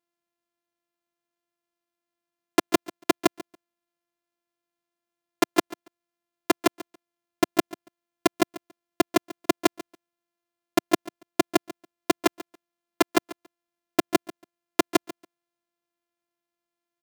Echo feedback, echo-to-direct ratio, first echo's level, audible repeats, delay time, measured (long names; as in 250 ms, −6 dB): 16%, −18.0 dB, −18.0 dB, 2, 141 ms